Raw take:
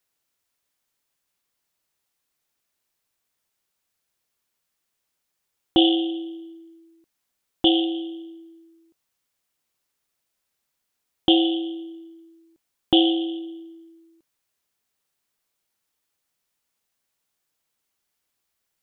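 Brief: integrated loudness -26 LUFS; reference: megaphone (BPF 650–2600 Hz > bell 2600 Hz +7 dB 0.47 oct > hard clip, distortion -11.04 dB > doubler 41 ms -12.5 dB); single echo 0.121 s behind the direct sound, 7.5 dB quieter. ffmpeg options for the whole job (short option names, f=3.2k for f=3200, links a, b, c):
-filter_complex "[0:a]highpass=650,lowpass=2.6k,equalizer=f=2.6k:t=o:w=0.47:g=7,aecho=1:1:121:0.422,asoftclip=type=hard:threshold=-20.5dB,asplit=2[a][b];[b]adelay=41,volume=-12.5dB[c];[a][c]amix=inputs=2:normalize=0,volume=2dB"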